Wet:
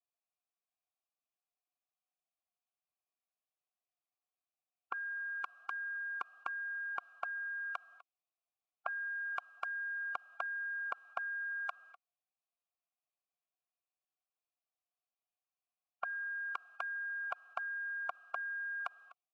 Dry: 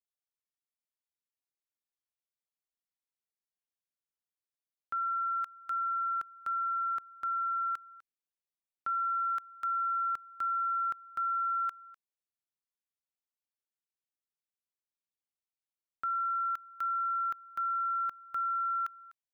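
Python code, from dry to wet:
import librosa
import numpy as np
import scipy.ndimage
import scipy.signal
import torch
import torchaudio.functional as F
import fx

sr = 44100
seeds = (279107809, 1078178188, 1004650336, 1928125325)

y = fx.pitch_keep_formants(x, sr, semitones=3.0)
y = fx.vowel_filter(y, sr, vowel='a')
y = y * 10.0 ** (12.0 / 20.0)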